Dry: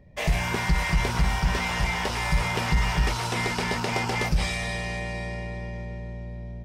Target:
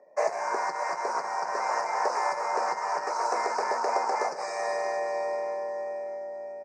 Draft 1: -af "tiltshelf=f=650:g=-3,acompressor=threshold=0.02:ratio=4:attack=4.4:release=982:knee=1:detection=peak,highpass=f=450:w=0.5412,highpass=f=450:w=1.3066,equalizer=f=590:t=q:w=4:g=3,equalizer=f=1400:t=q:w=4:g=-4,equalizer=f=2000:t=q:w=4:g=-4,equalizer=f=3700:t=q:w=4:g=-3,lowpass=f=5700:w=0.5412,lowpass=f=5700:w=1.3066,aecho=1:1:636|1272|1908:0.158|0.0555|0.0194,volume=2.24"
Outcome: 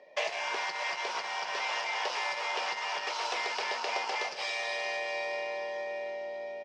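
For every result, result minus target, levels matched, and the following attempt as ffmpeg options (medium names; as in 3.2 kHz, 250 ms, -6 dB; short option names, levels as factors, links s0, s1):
4 kHz band +12.0 dB; compression: peak gain reduction +7 dB
-af "asuperstop=centerf=3200:order=4:qfactor=0.56,tiltshelf=f=650:g=-3,acompressor=threshold=0.02:ratio=4:attack=4.4:release=982:knee=1:detection=peak,highpass=f=450:w=0.5412,highpass=f=450:w=1.3066,equalizer=f=590:t=q:w=4:g=3,equalizer=f=1400:t=q:w=4:g=-4,equalizer=f=2000:t=q:w=4:g=-4,equalizer=f=3700:t=q:w=4:g=-3,lowpass=f=5700:w=0.5412,lowpass=f=5700:w=1.3066,aecho=1:1:636|1272|1908:0.158|0.0555|0.0194,volume=2.24"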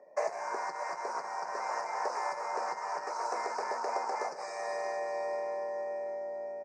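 compression: peak gain reduction +6.5 dB
-af "asuperstop=centerf=3200:order=4:qfactor=0.56,tiltshelf=f=650:g=-3,acompressor=threshold=0.0562:ratio=4:attack=4.4:release=982:knee=1:detection=peak,highpass=f=450:w=0.5412,highpass=f=450:w=1.3066,equalizer=f=590:t=q:w=4:g=3,equalizer=f=1400:t=q:w=4:g=-4,equalizer=f=2000:t=q:w=4:g=-4,equalizer=f=3700:t=q:w=4:g=-3,lowpass=f=5700:w=0.5412,lowpass=f=5700:w=1.3066,aecho=1:1:636|1272|1908:0.158|0.0555|0.0194,volume=2.24"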